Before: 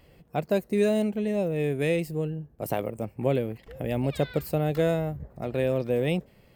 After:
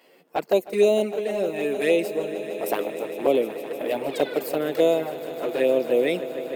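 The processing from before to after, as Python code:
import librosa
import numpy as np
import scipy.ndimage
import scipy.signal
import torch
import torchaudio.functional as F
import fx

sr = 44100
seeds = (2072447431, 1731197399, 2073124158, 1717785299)

p1 = scipy.signal.sosfilt(scipy.signal.butter(4, 290.0, 'highpass', fs=sr, output='sos'), x)
p2 = fx.env_flanger(p1, sr, rest_ms=11.9, full_db=-22.0)
p3 = p2 + fx.echo_swell(p2, sr, ms=153, loudest=5, wet_db=-17, dry=0)
y = p3 * 10.0 ** (7.5 / 20.0)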